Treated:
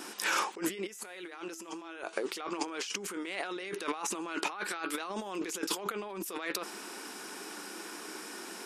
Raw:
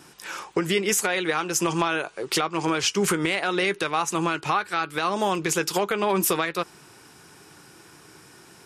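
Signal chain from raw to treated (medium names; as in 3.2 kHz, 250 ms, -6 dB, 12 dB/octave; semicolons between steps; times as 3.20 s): brick-wall FIR high-pass 190 Hz; compressor with a negative ratio -35 dBFS, ratio -1; 0.87–2.13 s: feedback comb 330 Hz, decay 0.93 s, mix 60%; trim -2 dB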